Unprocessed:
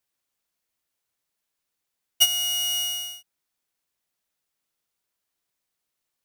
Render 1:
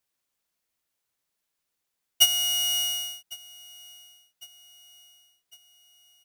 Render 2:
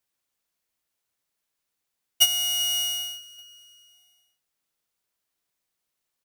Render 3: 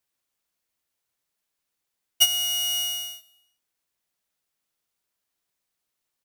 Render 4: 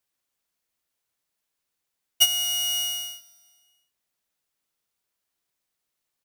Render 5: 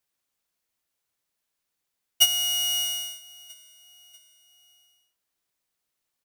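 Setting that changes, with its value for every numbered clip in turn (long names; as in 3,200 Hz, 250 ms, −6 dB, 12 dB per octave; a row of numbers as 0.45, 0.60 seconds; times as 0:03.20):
repeating echo, delay time: 1,104, 390, 125, 231, 642 milliseconds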